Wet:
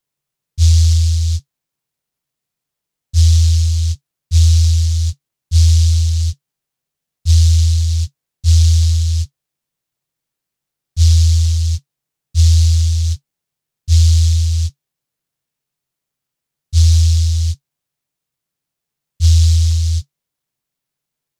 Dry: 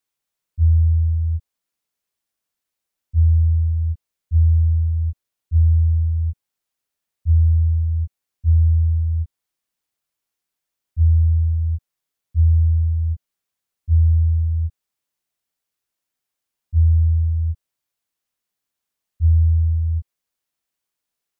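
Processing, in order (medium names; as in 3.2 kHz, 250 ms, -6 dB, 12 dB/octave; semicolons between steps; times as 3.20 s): peaking EQ 140 Hz +14 dB 0.53 oct; delay time shaken by noise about 5 kHz, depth 0.25 ms; trim +3 dB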